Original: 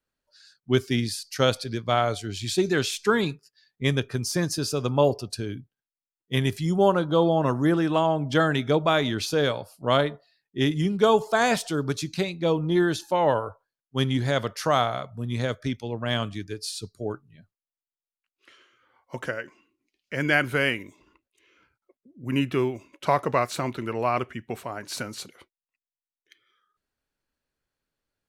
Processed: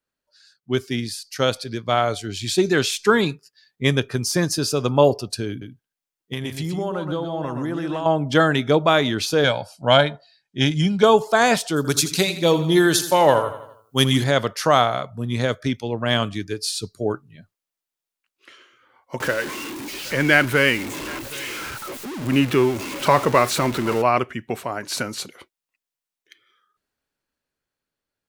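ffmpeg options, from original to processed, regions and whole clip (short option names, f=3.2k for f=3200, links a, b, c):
-filter_complex "[0:a]asettb=1/sr,asplit=3[a][b][c];[a]atrim=end=5.494[d];[b]atrim=start=5.49:end=8.06,asetpts=PTS-STARTPTS,afade=t=in:d=0.004:c=qsin,afade=t=out:st=2.566:d=0.004:c=qsin,acompressor=threshold=-27dB:ratio=12:attack=3.2:release=140:knee=1:detection=peak,aecho=1:1:124:0.473,atrim=end_sample=113337[e];[c]atrim=start=8.056[f];[d][e]acrossfade=d=0.004:c1=hsin:c2=qsin[g];[g][f]acrossfade=d=0.004:c1=qsin:c2=hsin,asettb=1/sr,asplit=3[h][i][j];[h]atrim=end=9.444[k];[i]atrim=start=9.44:end=11.03,asetpts=PTS-STARTPTS,afade=t=in:d=0.004:c=qsin,afade=t=out:st=1.586:d=0.004:c=qsin,lowpass=5.8k,highshelf=f=4.3k:g=9.5,aecho=1:1:1.3:0.58,atrim=end_sample=70119[l];[j]atrim=start=11.026[m];[k][l]acrossfade=d=0.004:c1=hsin:c2=qsin[n];[n][m]acrossfade=d=0.004:c1=qsin:c2=hsin,asettb=1/sr,asplit=3[o][p][q];[o]atrim=end=11.764[r];[p]atrim=start=11.76:end=14.24,asetpts=PTS-STARTPTS,afade=t=in:d=0.004:c=qsin,afade=t=out:st=2.476:d=0.004:c=qsin,aemphasis=mode=production:type=75kf,aecho=1:1:83|166|249|332|415:0.224|0.114|0.0582|0.0297|0.0151,atrim=end_sample=109368[s];[q]atrim=start=14.236[t];[r][s]acrossfade=d=0.004:c1=hsin:c2=qsin[u];[u][t]acrossfade=d=0.004:c1=qsin:c2=hsin,asettb=1/sr,asplit=3[v][w][x];[v]atrim=end=19.204[y];[w]atrim=start=19.2:end=24.02,asetpts=PTS-STARTPTS,afade=t=in:d=0.004:c=qsin,afade=t=out:st=4.816:d=0.004:c=qsin,aeval=exprs='val(0)+0.5*0.0282*sgn(val(0))':c=same,bandreject=f=700:w=13,aecho=1:1:772:0.0891,atrim=end_sample=212562[z];[x]atrim=start=24.016[aa];[y][z]acrossfade=d=0.004:c1=hsin:c2=qsin[ab];[ab][aa]acrossfade=d=0.004:c1=qsin:c2=hsin,lowshelf=f=82:g=-8,dynaudnorm=f=240:g=17:m=10.5dB"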